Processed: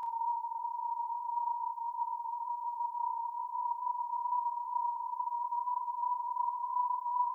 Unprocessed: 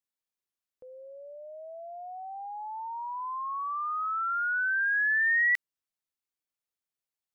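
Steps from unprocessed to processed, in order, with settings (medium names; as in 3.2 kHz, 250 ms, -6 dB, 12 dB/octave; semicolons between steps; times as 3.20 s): high-pass 790 Hz; treble shelf 2.9 kHz +9 dB; Paulstretch 49×, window 0.50 s, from 2.97 s; on a send: flutter echo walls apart 5.4 m, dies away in 0.36 s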